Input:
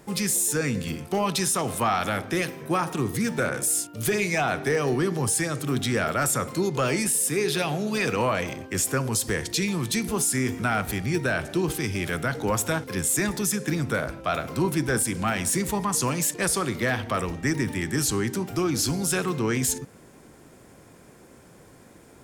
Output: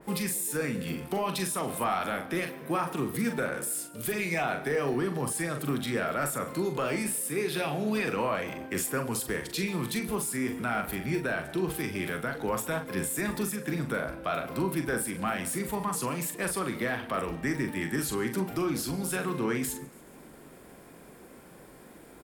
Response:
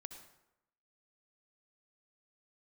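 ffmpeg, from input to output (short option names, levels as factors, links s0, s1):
-filter_complex "[0:a]equalizer=f=100:t=o:w=0.67:g=-11,equalizer=f=6300:t=o:w=0.67:g=-8,equalizer=f=16000:t=o:w=0.67:g=6,alimiter=limit=0.0891:level=0:latency=1:release=467,asplit=2[s0][s1];[s1]adelay=42,volume=0.447[s2];[s0][s2]amix=inputs=2:normalize=0,asplit=2[s3][s4];[s4]aecho=0:1:141|282|423|564:0.075|0.042|0.0235|0.0132[s5];[s3][s5]amix=inputs=2:normalize=0,adynamicequalizer=threshold=0.00501:dfrequency=2800:dqfactor=0.7:tfrequency=2800:tqfactor=0.7:attack=5:release=100:ratio=0.375:range=1.5:mode=cutabove:tftype=highshelf"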